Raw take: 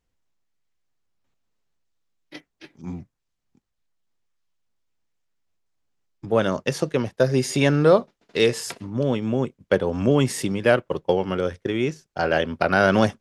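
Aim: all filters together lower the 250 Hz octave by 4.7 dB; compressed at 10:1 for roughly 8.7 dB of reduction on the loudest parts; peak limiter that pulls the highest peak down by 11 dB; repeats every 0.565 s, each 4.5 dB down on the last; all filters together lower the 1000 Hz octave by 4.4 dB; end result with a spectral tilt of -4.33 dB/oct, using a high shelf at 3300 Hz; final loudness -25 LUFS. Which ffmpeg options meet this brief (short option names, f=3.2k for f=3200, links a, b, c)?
-af "equalizer=f=250:t=o:g=-6,equalizer=f=1k:t=o:g=-7,highshelf=f=3.3k:g=4.5,acompressor=threshold=-23dB:ratio=10,alimiter=limit=-19dB:level=0:latency=1,aecho=1:1:565|1130|1695|2260|2825|3390|3955|4520|5085:0.596|0.357|0.214|0.129|0.0772|0.0463|0.0278|0.0167|0.01,volume=4.5dB"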